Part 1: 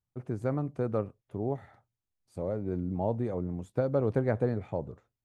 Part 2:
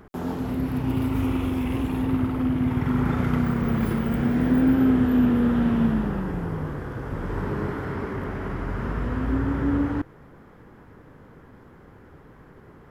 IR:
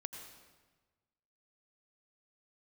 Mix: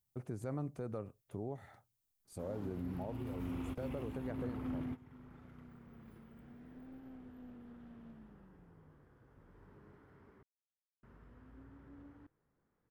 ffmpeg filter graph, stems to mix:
-filter_complex "[0:a]aemphasis=mode=production:type=50kf,volume=0.794,afade=t=out:st=2.72:d=0.49:silence=0.398107,afade=t=out:st=4.34:d=0.38:silence=0.446684,asplit=2[s0][s1];[1:a]aeval=exprs='clip(val(0),-1,0.1)':c=same,adelay=2250,volume=0.211,asplit=3[s2][s3][s4];[s2]atrim=end=10.43,asetpts=PTS-STARTPTS,afade=t=out:st=10.426:d=0.004:c=hsin[s5];[s3]atrim=start=10.43:end=11.03,asetpts=PTS-STARTPTS,volume=0[s6];[s4]atrim=start=11.03,asetpts=PTS-STARTPTS,afade=t=in:d=0.004:c=hsin[s7];[s5][s6][s7]concat=n=3:v=0:a=1[s8];[s1]apad=whole_len=668356[s9];[s8][s9]sidechaingate=range=0.112:threshold=0.00126:ratio=16:detection=peak[s10];[s0][s10]amix=inputs=2:normalize=0,alimiter=level_in=2.37:limit=0.0631:level=0:latency=1:release=185,volume=0.422"

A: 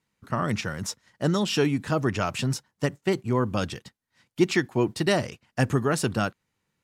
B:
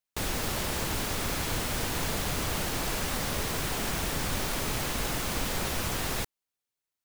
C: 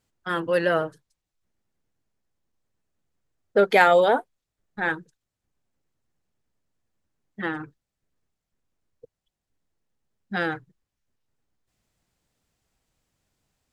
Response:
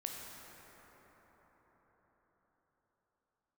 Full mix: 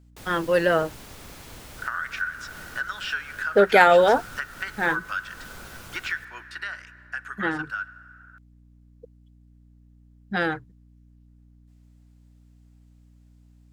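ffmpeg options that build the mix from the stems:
-filter_complex "[0:a]acrossover=split=4600[s0][s1];[s1]acompressor=threshold=0.00501:ratio=4:attack=1:release=60[s2];[s0][s2]amix=inputs=2:normalize=0,highpass=f=1500:t=q:w=13,adelay=1550,afade=t=out:st=5.98:d=0.67:silence=0.298538,asplit=2[s3][s4];[s4]volume=0.15[s5];[1:a]volume=0.211,asplit=2[s6][s7];[s7]volume=0.126[s8];[2:a]aeval=exprs='val(0)+0.002*(sin(2*PI*60*n/s)+sin(2*PI*2*60*n/s)/2+sin(2*PI*3*60*n/s)/3+sin(2*PI*4*60*n/s)/4+sin(2*PI*5*60*n/s)/5)':c=same,volume=1.19[s9];[s3][s6]amix=inputs=2:normalize=0,acompressor=threshold=0.0316:ratio=6,volume=1[s10];[3:a]atrim=start_sample=2205[s11];[s5][s8]amix=inputs=2:normalize=0[s12];[s12][s11]afir=irnorm=-1:irlink=0[s13];[s9][s10][s13]amix=inputs=3:normalize=0"

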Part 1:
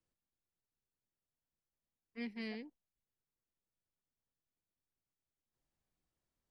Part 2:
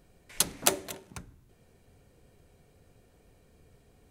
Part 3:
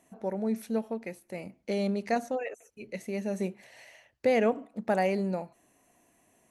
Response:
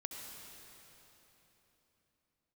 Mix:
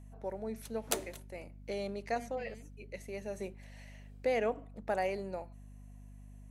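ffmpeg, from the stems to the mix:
-filter_complex "[0:a]volume=0.335[s0];[1:a]aeval=exprs='val(0)*pow(10,-21*(0.5-0.5*cos(2*PI*1.3*n/s))/20)':c=same,adelay=250,volume=0.473[s1];[2:a]highpass=320,volume=0.531[s2];[s0][s1][s2]amix=inputs=3:normalize=0,aeval=exprs='val(0)+0.00316*(sin(2*PI*50*n/s)+sin(2*PI*2*50*n/s)/2+sin(2*PI*3*50*n/s)/3+sin(2*PI*4*50*n/s)/4+sin(2*PI*5*50*n/s)/5)':c=same"

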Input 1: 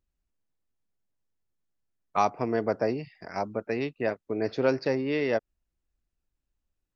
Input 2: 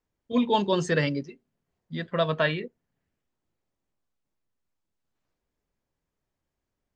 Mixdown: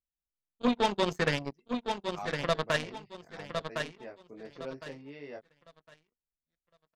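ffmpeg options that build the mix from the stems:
-filter_complex "[0:a]flanger=delay=19:depth=3.5:speed=0.33,volume=0.178[s0];[1:a]aeval=exprs='0.335*(cos(1*acos(clip(val(0)/0.335,-1,1)))-cos(1*PI/2))+0.00944*(cos(5*acos(clip(val(0)/0.335,-1,1)))-cos(5*PI/2))+0.0531*(cos(7*acos(clip(val(0)/0.335,-1,1)))-cos(7*PI/2))':c=same,adelay=300,volume=1.41,asplit=2[s1][s2];[s2]volume=0.251,aecho=0:1:1059|2118|3177|4236:1|0.26|0.0676|0.0176[s3];[s0][s1][s3]amix=inputs=3:normalize=0,alimiter=limit=0.178:level=0:latency=1:release=203"

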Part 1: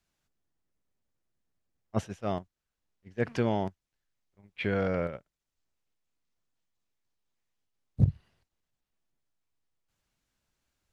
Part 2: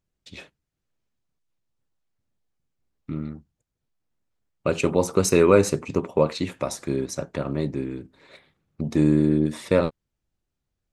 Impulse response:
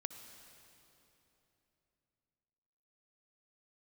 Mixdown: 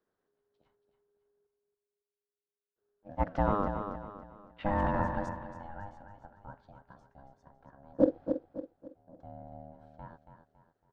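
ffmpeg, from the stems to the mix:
-filter_complex "[0:a]acrusher=bits=7:mode=log:mix=0:aa=0.000001,volume=1.19,asplit=3[s0][s1][s2];[s0]atrim=end=1.47,asetpts=PTS-STARTPTS,afade=t=out:st=1.466:d=0.004:c=hsin[s3];[s1]atrim=start=1.47:end=2.76,asetpts=PTS-STARTPTS,volume=0[s4];[s2]atrim=start=2.76,asetpts=PTS-STARTPTS,afade=t=in:d=0.004:c=hsin[s5];[s3][s4][s5]concat=n=3:v=0:a=1,asplit=3[s6][s7][s8];[s7]volume=0.422[s9];[1:a]volume=0.2,asplit=2[s10][s11];[s11]volume=0.224[s12];[s8]apad=whole_len=481885[s13];[s10][s13]sidechaingate=range=0.0224:threshold=0.00282:ratio=16:detection=peak[s14];[s9][s12]amix=inputs=2:normalize=0,aecho=0:1:278|556|834|1112|1390:1|0.37|0.137|0.0507|0.0187[s15];[s6][s14][s15]amix=inputs=3:normalize=0,lowpass=3800,highshelf=f=1500:t=q:w=3:g=-8,aeval=exprs='val(0)*sin(2*PI*410*n/s)':c=same"

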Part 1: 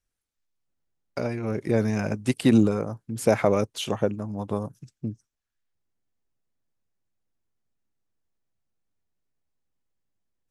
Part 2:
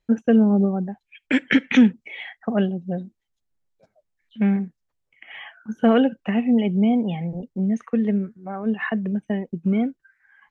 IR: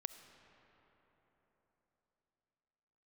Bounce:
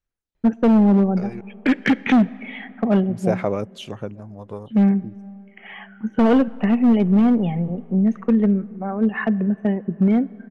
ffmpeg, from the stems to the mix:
-filter_complex "[0:a]aphaser=in_gain=1:out_gain=1:delay=3:decay=0.36:speed=0.29:type=sinusoidal,volume=0.531,asplit=3[s0][s1][s2];[s0]atrim=end=1.41,asetpts=PTS-STARTPTS,afade=t=out:st=1.406:d=0.004:c=hsin[s3];[s1]atrim=start=1.41:end=3.09,asetpts=PTS-STARTPTS,volume=0[s4];[s2]atrim=start=3.09,asetpts=PTS-STARTPTS,afade=t=in:d=0.004:c=hsin[s5];[s3][s4][s5]concat=n=3:v=0:a=1[s6];[1:a]highshelf=f=2600:g=-10.5,volume=5.96,asoftclip=hard,volume=0.168,adelay=350,volume=1.26,asplit=2[s7][s8];[s8]volume=0.501[s9];[2:a]atrim=start_sample=2205[s10];[s9][s10]afir=irnorm=-1:irlink=0[s11];[s6][s7][s11]amix=inputs=3:normalize=0,highshelf=f=7300:g=-11"

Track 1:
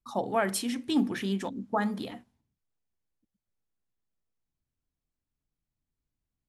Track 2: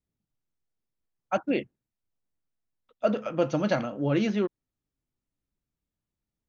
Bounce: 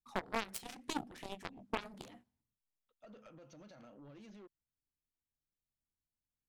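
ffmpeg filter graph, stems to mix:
-filter_complex "[0:a]acompressor=threshold=0.0282:ratio=4,volume=0.841,asplit=2[s0][s1];[1:a]highshelf=f=5300:g=10.5,acompressor=threshold=0.0562:ratio=6,alimiter=level_in=1.41:limit=0.0631:level=0:latency=1:release=128,volume=0.708,volume=0.447[s2];[s1]apad=whole_len=285973[s3];[s2][s3]sidechaincompress=threshold=0.00178:ratio=10:attack=35:release=213[s4];[s0][s4]amix=inputs=2:normalize=0,aeval=exprs='0.0531*(cos(1*acos(clip(val(0)/0.0531,-1,1)))-cos(1*PI/2))+0.0266*(cos(3*acos(clip(val(0)/0.0531,-1,1)))-cos(3*PI/2))+0.00237*(cos(5*acos(clip(val(0)/0.0531,-1,1)))-cos(5*PI/2))+0.000335*(cos(6*acos(clip(val(0)/0.0531,-1,1)))-cos(6*PI/2))':c=same"

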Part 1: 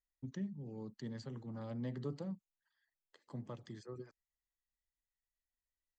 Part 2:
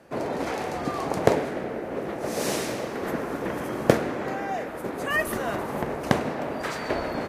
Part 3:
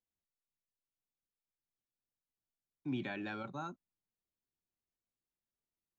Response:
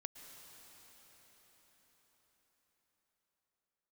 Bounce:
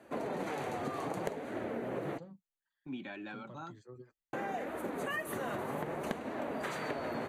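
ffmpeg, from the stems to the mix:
-filter_complex "[0:a]volume=0.891[s0];[1:a]highpass=85,volume=0.944,asplit=3[s1][s2][s3];[s1]atrim=end=2.18,asetpts=PTS-STARTPTS,afade=t=out:st=2.176:d=0.004:c=hsin[s4];[s2]atrim=start=2.18:end=4.33,asetpts=PTS-STARTPTS,volume=0[s5];[s3]atrim=start=4.33,asetpts=PTS-STARTPTS,afade=t=in:d=0.004:c=hsin[s6];[s4][s5][s6]concat=n=3:v=0:a=1[s7];[2:a]agate=range=0.2:threshold=0.00398:ratio=16:detection=peak,equalizer=f=87:t=o:w=1.3:g=-8.5,volume=1.12[s8];[s0][s7][s8]amix=inputs=3:normalize=0,equalizer=f=5200:w=6.3:g=-14,flanger=delay=2.8:depth=5.8:regen=-37:speed=0.63:shape=triangular,acompressor=threshold=0.0224:ratio=16"

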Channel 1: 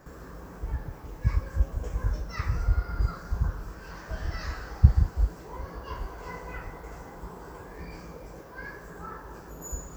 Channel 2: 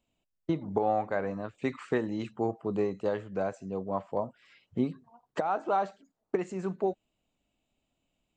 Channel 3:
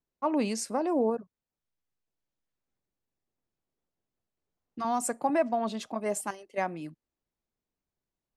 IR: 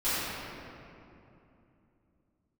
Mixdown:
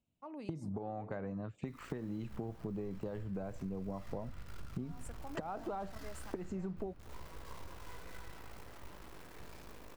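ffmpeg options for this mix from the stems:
-filter_complex "[0:a]acompressor=threshold=0.0355:ratio=20,acrusher=bits=4:dc=4:mix=0:aa=0.000001,adelay=1600,volume=0.224,asplit=2[s0][s1];[s1]volume=0.237[s2];[1:a]agate=range=0.282:threshold=0.00282:ratio=16:detection=peak,equalizer=f=120:w=0.54:g=13.5,volume=0.891,asplit=2[s3][s4];[2:a]alimiter=limit=0.0841:level=0:latency=1:release=38,volume=0.133[s5];[s4]apad=whole_len=510064[s6];[s0][s6]sidechaincompress=threshold=0.0141:ratio=8:attack=16:release=101[s7];[s3][s5]amix=inputs=2:normalize=0,acompressor=threshold=0.0282:ratio=6,volume=1[s8];[3:a]atrim=start_sample=2205[s9];[s2][s9]afir=irnorm=-1:irlink=0[s10];[s7][s8][s10]amix=inputs=3:normalize=0,acompressor=threshold=0.0112:ratio=3"

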